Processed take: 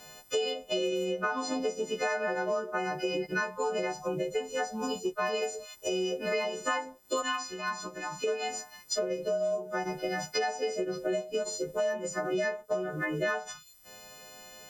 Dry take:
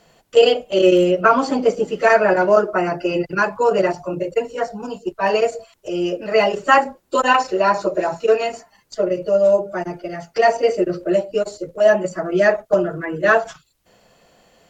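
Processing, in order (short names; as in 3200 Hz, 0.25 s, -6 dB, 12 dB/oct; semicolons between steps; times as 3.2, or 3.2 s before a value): frequency quantiser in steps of 3 st; compressor 10:1, threshold -28 dBFS, peak gain reduction 20.5 dB; 7.22–8.24 band shelf 520 Hz -13.5 dB 1.1 oct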